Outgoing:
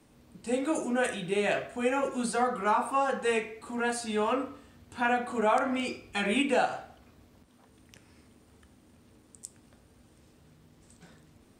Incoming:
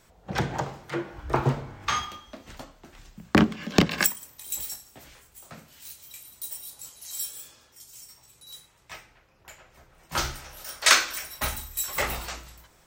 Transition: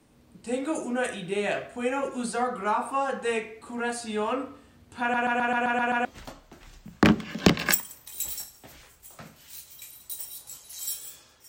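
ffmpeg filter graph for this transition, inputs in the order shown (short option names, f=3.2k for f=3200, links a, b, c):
-filter_complex "[0:a]apad=whole_dur=11.48,atrim=end=11.48,asplit=8[a][b][c][d][e][f][g][h];[a]atrim=end=5.142[i];[b]atrim=start=5.008:end=5.142[j];[c]atrim=start=5.008:end=5.142[k];[d]atrim=start=5.008:end=5.142[l];[e]atrim=start=5.008:end=5.142[m];[f]atrim=start=5.008:end=5.142[n];[g]atrim=start=5.008:end=5.142[o];[h]atrim=start=5.008:end=5.142[p];[1:a]atrim=start=2.368:end=7.8[q];[i][j]acrossfade=d=0.004:c1=hsin:c2=hsin[r];[r][k]acrossfade=d=0.004:c1=hsin:c2=hsin[s];[s][l]acrossfade=d=0.004:c1=hsin:c2=hsin[t];[t][m]acrossfade=d=0.004:c1=hsin:c2=hsin[u];[u][n]acrossfade=d=0.004:c1=hsin:c2=hsin[v];[v][o]acrossfade=d=0.004:c1=hsin:c2=hsin[w];[w][p]acrossfade=d=0.004:c1=hsin:c2=hsin[x];[x][q]acrossfade=d=0.004:c1=hsin:c2=hsin"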